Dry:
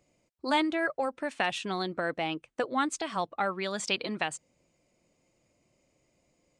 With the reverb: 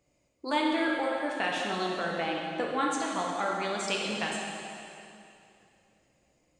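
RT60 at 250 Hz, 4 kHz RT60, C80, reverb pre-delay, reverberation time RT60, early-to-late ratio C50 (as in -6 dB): 2.7 s, 2.5 s, 1.5 dB, 5 ms, 2.7 s, -0.5 dB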